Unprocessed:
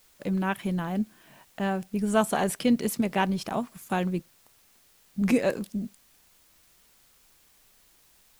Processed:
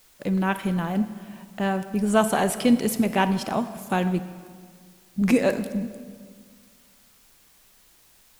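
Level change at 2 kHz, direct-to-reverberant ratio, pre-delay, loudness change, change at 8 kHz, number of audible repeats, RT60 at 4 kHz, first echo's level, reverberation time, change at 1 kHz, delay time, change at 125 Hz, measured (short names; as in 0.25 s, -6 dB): +4.0 dB, 11.0 dB, 31 ms, +4.0 dB, +3.5 dB, none, 1.4 s, none, 1.8 s, +4.0 dB, none, +4.0 dB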